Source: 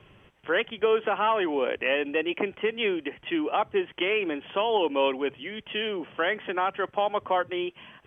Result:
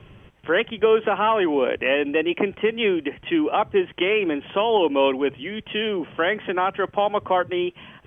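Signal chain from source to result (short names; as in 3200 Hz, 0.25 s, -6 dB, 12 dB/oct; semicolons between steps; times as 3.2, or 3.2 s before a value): low shelf 270 Hz +8 dB; gain +3.5 dB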